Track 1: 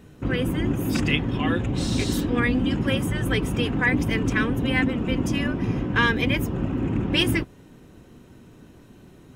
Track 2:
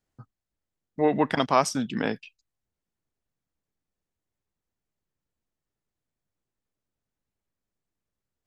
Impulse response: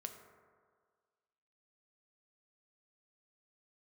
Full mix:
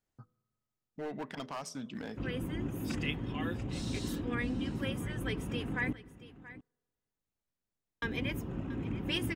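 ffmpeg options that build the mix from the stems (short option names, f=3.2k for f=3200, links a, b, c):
-filter_complex "[0:a]adelay=1950,volume=-13.5dB,asplit=3[a][b][c];[a]atrim=end=5.93,asetpts=PTS-STARTPTS,afade=t=out:st=5.926:d=0.004:c=hsin[d];[b]atrim=start=5.93:end=8.02,asetpts=PTS-STARTPTS,volume=0[e];[c]atrim=start=8.02,asetpts=PTS-STARTPTS,afade=t=in:d=0.004:c=hsin[f];[d][e][f]concat=n=3:v=0:a=1,asplit=3[g][h][i];[h]volume=-13.5dB[j];[i]volume=-15.5dB[k];[1:a]bandreject=f=82.46:t=h:w=4,bandreject=f=164.92:t=h:w=4,bandreject=f=247.38:t=h:w=4,bandreject=f=329.84:t=h:w=4,bandreject=f=412.3:t=h:w=4,bandreject=f=494.76:t=h:w=4,bandreject=f=577.22:t=h:w=4,acompressor=threshold=-45dB:ratio=1.5,asoftclip=type=hard:threshold=-29.5dB,volume=-6dB,asplit=2[l][m];[m]volume=-12.5dB[n];[2:a]atrim=start_sample=2205[o];[j][n]amix=inputs=2:normalize=0[p];[p][o]afir=irnorm=-1:irlink=0[q];[k]aecho=0:1:680:1[r];[g][l][q][r]amix=inputs=4:normalize=0"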